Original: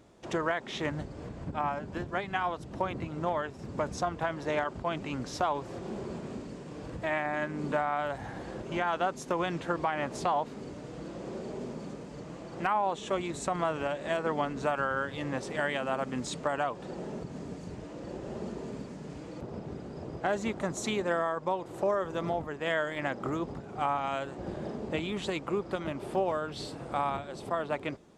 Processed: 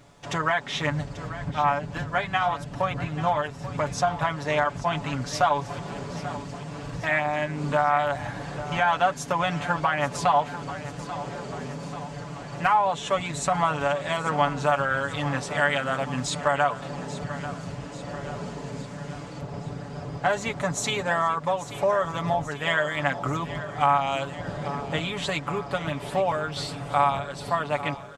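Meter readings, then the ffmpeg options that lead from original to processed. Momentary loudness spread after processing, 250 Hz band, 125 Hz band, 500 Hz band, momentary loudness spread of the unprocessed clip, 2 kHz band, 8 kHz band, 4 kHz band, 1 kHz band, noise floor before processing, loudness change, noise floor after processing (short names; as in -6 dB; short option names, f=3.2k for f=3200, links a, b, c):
12 LU, +2.5 dB, +9.0 dB, +4.5 dB, 11 LU, +8.0 dB, +9.0 dB, +9.0 dB, +8.0 dB, -45 dBFS, +7.0 dB, -39 dBFS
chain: -filter_complex "[0:a]equalizer=f=350:w=1.3:g=-11,aecho=1:1:7:0.69,asplit=2[a][b];[b]aecho=0:1:838|1676|2514|3352|4190|5028:0.2|0.116|0.0671|0.0389|0.0226|0.0131[c];[a][c]amix=inputs=2:normalize=0,volume=7dB"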